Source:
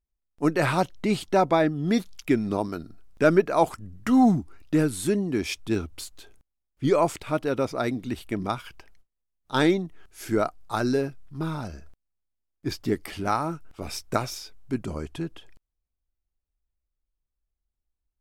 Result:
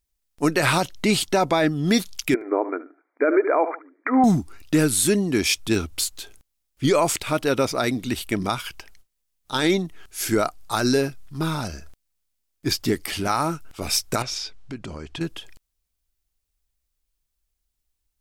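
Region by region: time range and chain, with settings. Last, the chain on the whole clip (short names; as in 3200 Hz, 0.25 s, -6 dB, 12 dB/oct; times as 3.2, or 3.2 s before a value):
2.34–4.24 brick-wall FIR band-pass 260–2400 Hz + dynamic EQ 450 Hz, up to +5 dB, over -34 dBFS, Q 1.7 + feedback echo 73 ms, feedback 23%, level -18 dB
14.22–15.21 LPF 4900 Hz + compressor 3:1, threshold -37 dBFS
whole clip: high shelf 2200 Hz +11 dB; maximiser +12.5 dB; gain -8.5 dB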